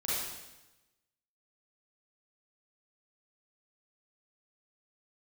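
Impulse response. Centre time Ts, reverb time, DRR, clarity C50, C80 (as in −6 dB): 99 ms, 1.0 s, −9.5 dB, −4.5 dB, 0.5 dB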